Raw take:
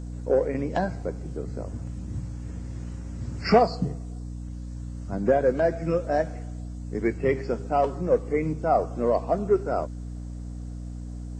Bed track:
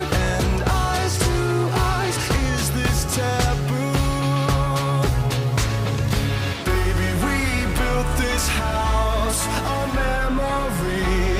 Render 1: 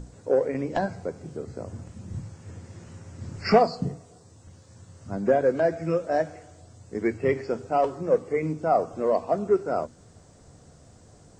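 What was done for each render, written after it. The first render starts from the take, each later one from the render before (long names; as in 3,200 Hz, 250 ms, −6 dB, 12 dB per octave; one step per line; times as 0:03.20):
mains-hum notches 60/120/180/240/300 Hz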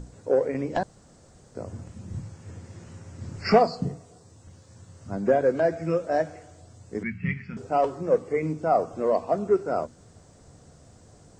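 0:00.83–0:01.55: fill with room tone
0:07.03–0:07.57: drawn EQ curve 120 Hz 0 dB, 190 Hz +13 dB, 280 Hz −15 dB, 410 Hz −26 dB, 600 Hz −29 dB, 900 Hz −17 dB, 1,600 Hz −2 dB, 2,400 Hz +5 dB, 4,200 Hz −11 dB, 9,400 Hz −22 dB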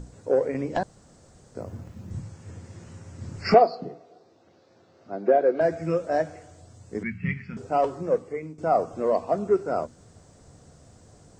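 0:01.60–0:02.11: running median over 5 samples
0:03.54–0:05.61: loudspeaker in its box 330–4,300 Hz, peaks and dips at 360 Hz +6 dB, 690 Hz +5 dB, 1,000 Hz −5 dB, 1,800 Hz −4 dB, 3,100 Hz −5 dB
0:08.00–0:08.58: fade out, to −16 dB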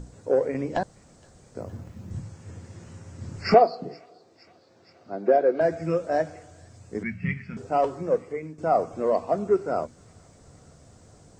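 delay with a high-pass on its return 467 ms, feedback 72%, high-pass 2,400 Hz, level −20.5 dB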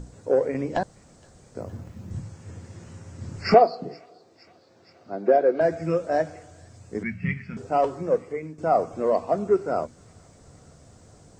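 level +1 dB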